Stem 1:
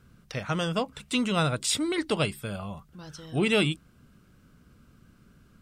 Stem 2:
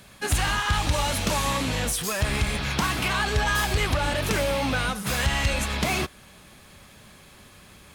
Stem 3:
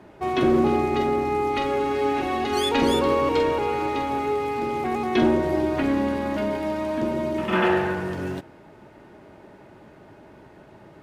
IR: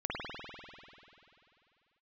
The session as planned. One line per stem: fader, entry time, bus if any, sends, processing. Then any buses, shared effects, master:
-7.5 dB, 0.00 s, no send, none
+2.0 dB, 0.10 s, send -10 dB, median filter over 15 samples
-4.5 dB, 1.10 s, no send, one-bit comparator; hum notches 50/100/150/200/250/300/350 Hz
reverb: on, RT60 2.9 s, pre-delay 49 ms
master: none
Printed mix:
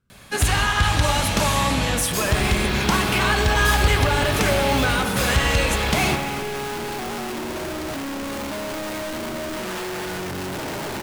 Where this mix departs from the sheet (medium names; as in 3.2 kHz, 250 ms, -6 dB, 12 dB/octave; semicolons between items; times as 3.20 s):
stem 1 -7.5 dB -> -14.5 dB; stem 2: missing median filter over 15 samples; stem 3: entry 1.10 s -> 2.15 s